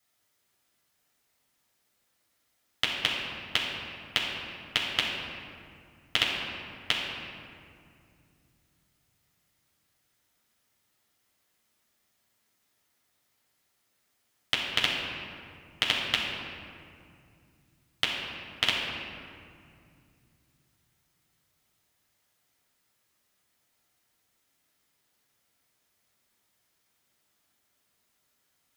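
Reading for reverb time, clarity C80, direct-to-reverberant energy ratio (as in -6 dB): 2.4 s, 2.5 dB, -5.5 dB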